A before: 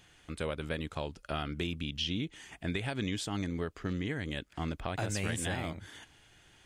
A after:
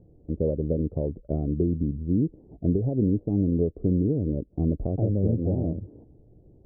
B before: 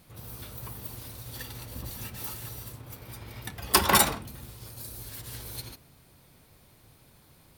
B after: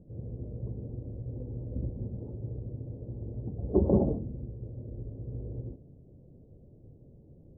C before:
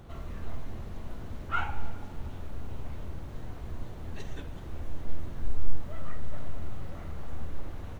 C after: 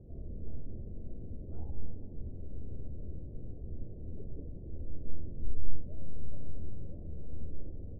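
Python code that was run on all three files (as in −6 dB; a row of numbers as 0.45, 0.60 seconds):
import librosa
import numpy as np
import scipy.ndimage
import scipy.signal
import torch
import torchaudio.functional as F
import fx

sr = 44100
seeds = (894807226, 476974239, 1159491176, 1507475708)

y = scipy.signal.sosfilt(scipy.signal.butter(6, 540.0, 'lowpass', fs=sr, output='sos'), x)
y = librosa.util.normalize(y) * 10.0 ** (-12 / 20.0)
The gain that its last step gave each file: +12.0, +6.0, −3.0 decibels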